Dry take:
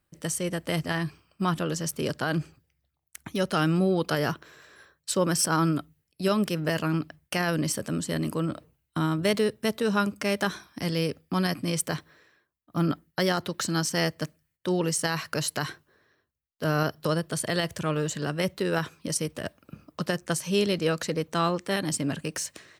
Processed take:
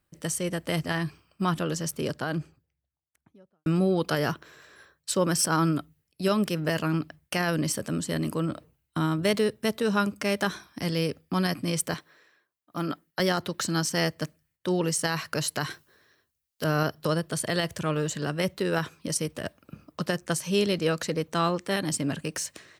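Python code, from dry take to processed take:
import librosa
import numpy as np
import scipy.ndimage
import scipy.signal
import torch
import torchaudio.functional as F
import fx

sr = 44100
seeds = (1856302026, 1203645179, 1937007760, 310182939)

y = fx.studio_fade_out(x, sr, start_s=1.7, length_s=1.96)
y = fx.highpass(y, sr, hz=380.0, slope=6, at=(11.94, 13.2))
y = fx.high_shelf(y, sr, hz=2800.0, db=10.5, at=(15.7, 16.64))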